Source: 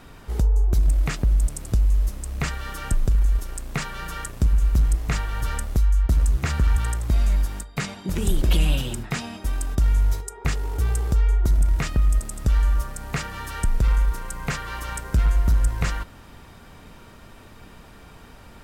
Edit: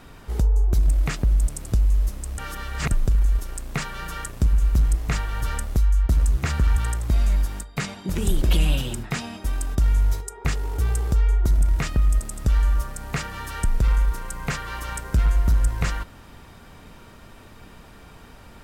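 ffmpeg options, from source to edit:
ffmpeg -i in.wav -filter_complex "[0:a]asplit=3[link_01][link_02][link_03];[link_01]atrim=end=2.382[link_04];[link_02]atrim=start=2.378:end=2.912,asetpts=PTS-STARTPTS,areverse[link_05];[link_03]atrim=start=2.908[link_06];[link_04][link_05]acrossfade=duration=0.004:curve1=hsin:curve2=hsin[link_07];[link_07][link_06]acrossfade=duration=0.004:curve1=hsin:curve2=hsin" out.wav

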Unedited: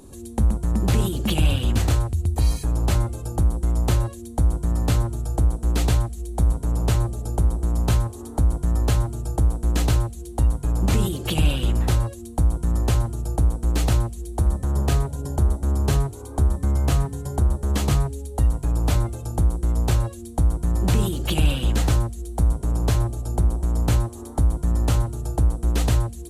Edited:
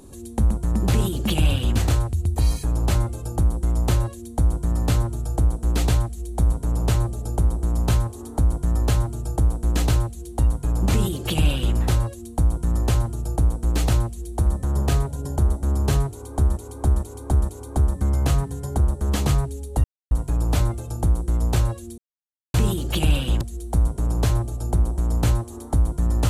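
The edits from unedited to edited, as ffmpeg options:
ffmpeg -i in.wav -filter_complex "[0:a]asplit=8[link_01][link_02][link_03][link_04][link_05][link_06][link_07][link_08];[link_01]atrim=end=16.572[link_09];[link_02]atrim=start=16.108:end=16.572[link_10];[link_03]atrim=start=16.108:end=16.572[link_11];[link_04]atrim=start=16.108:end=18.46,asetpts=PTS-STARTPTS,afade=type=out:start_time=2.348:duration=0.004:curve=hsin,apad=pad_dur=0.27[link_12];[link_05]atrim=start=18.46:end=20.33,asetpts=PTS-STARTPTS,afade=type=in:duration=0.004:curve=hsin,afade=type=out:start_time=1.866:duration=0.004:curve=hsin[link_13];[link_06]atrim=start=20.33:end=20.89,asetpts=PTS-STARTPTS,volume=0[link_14];[link_07]atrim=start=20.89:end=21.762,asetpts=PTS-STARTPTS,afade=type=in:duration=0.004:curve=hsin[link_15];[link_08]atrim=start=22.058[link_16];[link_09][link_10]acrossfade=duration=0.004:curve1=hsin:curve2=hsin[link_17];[link_17][link_11]acrossfade=duration=0.004:curve1=hsin:curve2=hsin[link_18];[link_12][link_13][link_14][link_15]concat=n=4:v=0:a=1[link_19];[link_18][link_19]acrossfade=duration=0.004:curve1=hsin:curve2=hsin[link_20];[link_20][link_16]acrossfade=duration=0.004:curve1=hsin:curve2=hsin" out.wav

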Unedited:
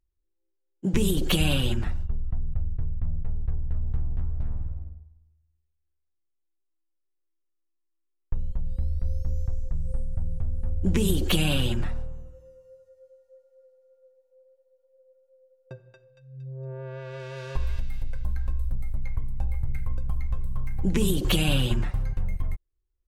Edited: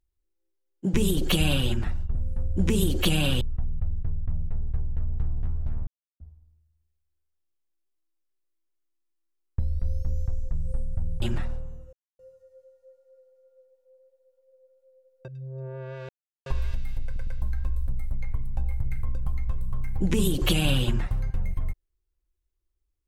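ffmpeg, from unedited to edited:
ffmpeg -i in.wav -filter_complex "[0:a]asplit=14[link_01][link_02][link_03][link_04][link_05][link_06][link_07][link_08][link_09][link_10][link_11][link_12][link_13][link_14];[link_01]atrim=end=2.152[link_15];[link_02]atrim=start=10.418:end=11.682[link_16];[link_03]atrim=start=2.148:end=4.61,asetpts=PTS-STARTPTS,afade=type=out:start_time=2.458:duration=0.004:curve=hsin[link_17];[link_04]atrim=start=4.61:end=4.94,asetpts=PTS-STARTPTS,volume=0[link_18];[link_05]atrim=start=4.94:end=8.332,asetpts=PTS-STARTPTS,afade=type=in:duration=0.004:curve=hsin[link_19];[link_06]atrim=start=8.788:end=10.422[link_20];[link_07]atrim=start=11.678:end=12.39,asetpts=PTS-STARTPTS,afade=type=out:start_time=0.708:duration=0.004:curve=hsin[link_21];[link_08]atrim=start=12.39:end=12.65,asetpts=PTS-STARTPTS,volume=0[link_22];[link_09]atrim=start=12.65:end=15.742,asetpts=PTS-STARTPTS,afade=type=in:duration=0.004:curve=hsin[link_23];[link_10]atrim=start=16.328:end=17.14,asetpts=PTS-STARTPTS,afade=type=out:start_time=0.808:duration=0.004:curve=hsin[link_24];[link_11]atrim=start=17.14:end=17.51,asetpts=PTS-STARTPTS,volume=0[link_25];[link_12]atrim=start=17.51:end=18.212,asetpts=PTS-STARTPTS,afade=type=in:duration=0.004:curve=hsin[link_26];[link_13]atrim=start=18.098:end=18.212[link_27];[link_14]atrim=start=18.098[link_28];[link_15][link_16]acrossfade=duration=0.004:curve1=hsin:curve2=hsin[link_29];[link_17][link_18][link_19]concat=n=3:v=0:a=1[link_30];[link_29][link_30]acrossfade=duration=0.004:curve1=hsin:curve2=hsin[link_31];[link_31][link_20]acrossfade=duration=0.004:curve1=hsin:curve2=hsin[link_32];[link_21][link_22][link_23]concat=n=3:v=0:a=1[link_33];[link_32][link_33]acrossfade=duration=0.004:curve1=hsin:curve2=hsin[link_34];[link_24][link_25][link_26]concat=n=3:v=0:a=1[link_35];[link_34][link_35]acrossfade=duration=0.004:curve1=hsin:curve2=hsin[link_36];[link_36][link_27]acrossfade=duration=0.004:curve1=hsin:curve2=hsin[link_37];[link_37][link_28]acrossfade=duration=0.004:curve1=hsin:curve2=hsin" out.wav

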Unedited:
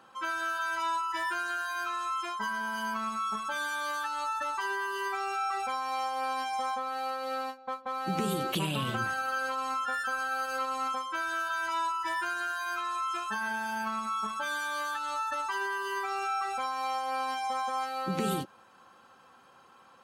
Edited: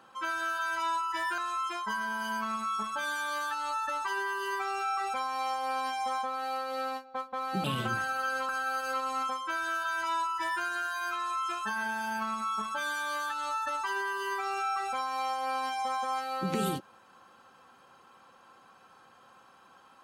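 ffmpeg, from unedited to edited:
ffmpeg -i in.wav -filter_complex "[0:a]asplit=4[link_01][link_02][link_03][link_04];[link_01]atrim=end=1.382[link_05];[link_02]atrim=start=1.908:end=8.172[link_06];[link_03]atrim=start=8.728:end=9.582[link_07];[link_04]atrim=start=10.138[link_08];[link_05][link_06]acrossfade=duration=0.004:curve1=hsin:curve2=hsin[link_09];[link_09][link_07]acrossfade=duration=0.004:curve1=hsin:curve2=hsin[link_10];[link_10][link_08]acrossfade=duration=0.004:curve1=hsin:curve2=hsin" out.wav

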